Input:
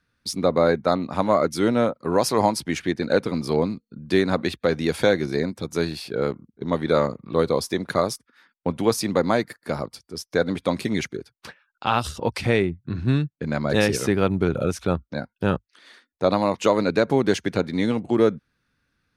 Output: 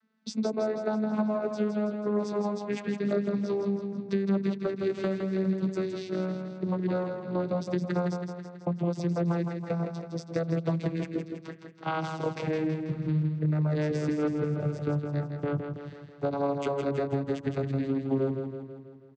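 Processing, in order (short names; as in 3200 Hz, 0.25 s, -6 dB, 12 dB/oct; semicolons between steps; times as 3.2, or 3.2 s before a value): vocoder on a gliding note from A3, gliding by -9 st; compressor, threshold -28 dBFS, peak gain reduction 15 dB; on a send: feedback echo 0.163 s, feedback 56%, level -6.5 dB; on the sum: gain +1.5 dB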